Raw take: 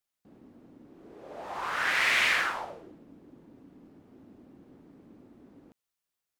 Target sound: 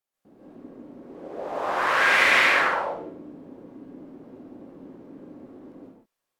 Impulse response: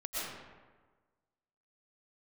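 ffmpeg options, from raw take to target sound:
-filter_complex "[0:a]equalizer=f=500:w=0.44:g=7.5[s0];[1:a]atrim=start_sample=2205,afade=t=out:st=0.33:d=0.01,atrim=end_sample=14994,asetrate=37485,aresample=44100[s1];[s0][s1]afir=irnorm=-1:irlink=0"

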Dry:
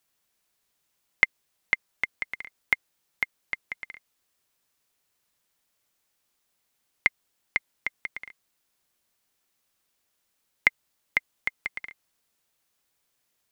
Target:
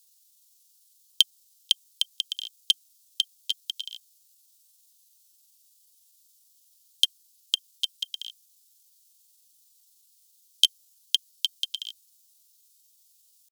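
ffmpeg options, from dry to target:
-af "asetrate=66075,aresample=44100,atempo=0.66742,aexciter=amount=13.3:drive=9.4:freq=3100,volume=0.178"

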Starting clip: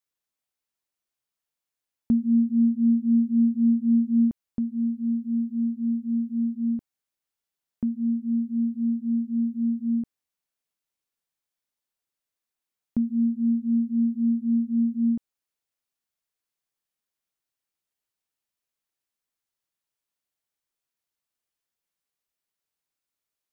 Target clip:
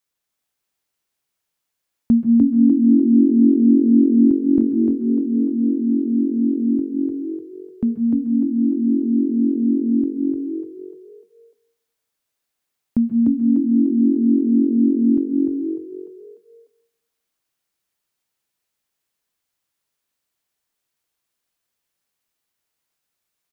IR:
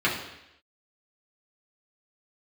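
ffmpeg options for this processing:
-filter_complex "[0:a]asplit=6[s0][s1][s2][s3][s4][s5];[s1]adelay=298,afreqshift=46,volume=0.708[s6];[s2]adelay=596,afreqshift=92,volume=0.292[s7];[s3]adelay=894,afreqshift=138,volume=0.119[s8];[s4]adelay=1192,afreqshift=184,volume=0.049[s9];[s5]adelay=1490,afreqshift=230,volume=0.02[s10];[s0][s6][s7][s8][s9][s10]amix=inputs=6:normalize=0,asplit=2[s11][s12];[1:a]atrim=start_sample=2205,adelay=129[s13];[s12][s13]afir=irnorm=-1:irlink=0,volume=0.0531[s14];[s11][s14]amix=inputs=2:normalize=0,volume=2.11"

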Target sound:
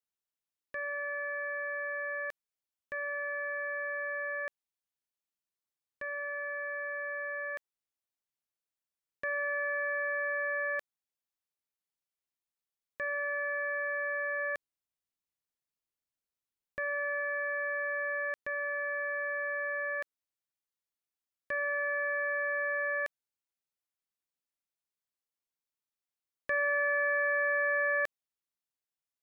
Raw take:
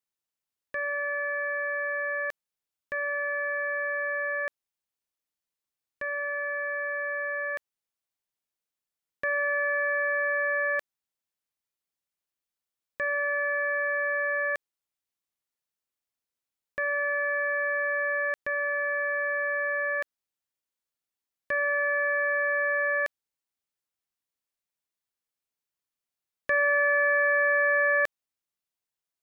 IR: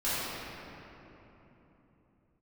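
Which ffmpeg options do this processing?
-filter_complex "[0:a]asettb=1/sr,asplit=3[s0][s1][s2];[s0]atrim=end=14.394[s3];[s1]atrim=start=14.39:end=17.21,asetpts=PTS-STARTPTS,afade=t=in:d=0.004:c=qsin,afade=t=out:st=2.816:d=0.004:c=qsin,lowshelf=f=220:g=6.5[s4];[s2]atrim=start=17.206[s5];[s3][s4]acrossfade=d=0.004:c1=hsin:c2=qsin[s6];[s6][s5]acrossfade=d=0.004:c1=qsin:c2=hsin,volume=0.501"

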